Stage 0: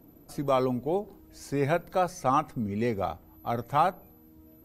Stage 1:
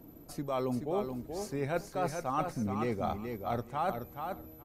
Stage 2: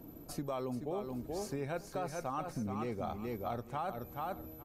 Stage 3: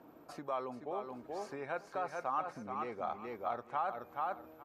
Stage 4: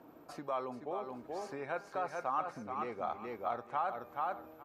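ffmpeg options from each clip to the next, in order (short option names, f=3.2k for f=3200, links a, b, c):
-af "areverse,acompressor=threshold=-32dB:ratio=6,areverse,aecho=1:1:427|854|1281:0.501|0.0902|0.0162,volume=2dB"
-af "bandreject=f=2k:w=16,acompressor=threshold=-36dB:ratio=6,volume=1.5dB"
-af "bandpass=f=1.2k:t=q:w=1:csg=0,volume=5dB"
-af "bandreject=f=200.1:t=h:w=4,bandreject=f=400.2:t=h:w=4,bandreject=f=600.3:t=h:w=4,bandreject=f=800.4:t=h:w=4,bandreject=f=1.0005k:t=h:w=4,bandreject=f=1.2006k:t=h:w=4,bandreject=f=1.4007k:t=h:w=4,bandreject=f=1.6008k:t=h:w=4,bandreject=f=1.8009k:t=h:w=4,bandreject=f=2.001k:t=h:w=4,bandreject=f=2.2011k:t=h:w=4,bandreject=f=2.4012k:t=h:w=4,bandreject=f=2.6013k:t=h:w=4,bandreject=f=2.8014k:t=h:w=4,bandreject=f=3.0015k:t=h:w=4,bandreject=f=3.2016k:t=h:w=4,bandreject=f=3.4017k:t=h:w=4,bandreject=f=3.6018k:t=h:w=4,bandreject=f=3.8019k:t=h:w=4,bandreject=f=4.002k:t=h:w=4,bandreject=f=4.2021k:t=h:w=4,bandreject=f=4.4022k:t=h:w=4,bandreject=f=4.6023k:t=h:w=4,bandreject=f=4.8024k:t=h:w=4,bandreject=f=5.0025k:t=h:w=4,bandreject=f=5.2026k:t=h:w=4,bandreject=f=5.4027k:t=h:w=4,bandreject=f=5.6028k:t=h:w=4,volume=1dB"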